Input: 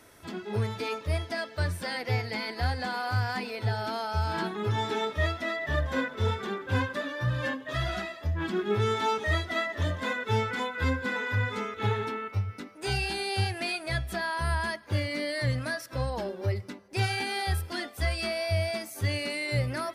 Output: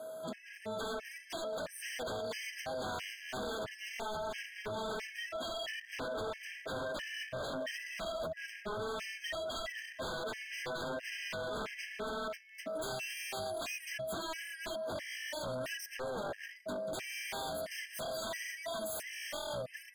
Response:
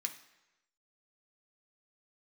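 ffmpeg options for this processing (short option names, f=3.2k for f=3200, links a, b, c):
-filter_complex "[0:a]acompressor=threshold=-39dB:ratio=8,aeval=exprs='val(0)+0.00398*sin(2*PI*640*n/s)':c=same,equalizer=f=500:t=o:w=1:g=8,equalizer=f=1k:t=o:w=1:g=-5,equalizer=f=4k:t=o:w=1:g=-5,asettb=1/sr,asplit=3[a][b][c];[a]atrim=end=16.554[d];[b]atrim=start=16.55:end=18.55,asetpts=PTS-STARTPTS,afade=t=in:d=0.004:c=qsin,afade=t=out:st=1.996:d=0.004:c=qsin,asplit=7[e][f][g][h][i][j][k];[f]adelay=184,afreqshift=-110,volume=-10.5dB[l];[g]adelay=368,afreqshift=-220,volume=-15.7dB[m];[h]adelay=552,afreqshift=-330,volume=-20.9dB[n];[i]adelay=736,afreqshift=-440,volume=-26.1dB[o];[j]adelay=920,afreqshift=-550,volume=-31.3dB[p];[k]adelay=1104,afreqshift=-660,volume=-36.5dB[q];[e][l][m][n][o][p][q]amix=inputs=7:normalize=0,atrim=end_sample=88200[r];[c]atrim=start=18.546[s];[d][r]acrossfade=d=0.004:c1=hsin:c2=qsin[t];[t][s]acrossfade=d=0.004:c1=qsin:c2=hsin,dynaudnorm=f=160:g=7:m=6dB,highpass=f=170:w=0.5412,highpass=f=170:w=1.3066,equalizer=f=350:w=2.2:g=-12.5,aeval=exprs='0.0141*(abs(mod(val(0)/0.0141+3,4)-2)-1)':c=same,afftfilt=real='re*gt(sin(2*PI*1.5*pts/sr)*(1-2*mod(floor(b*sr/1024/1600),2)),0)':imag='im*gt(sin(2*PI*1.5*pts/sr)*(1-2*mod(floor(b*sr/1024/1600),2)),0)':win_size=1024:overlap=0.75,volume=4.5dB"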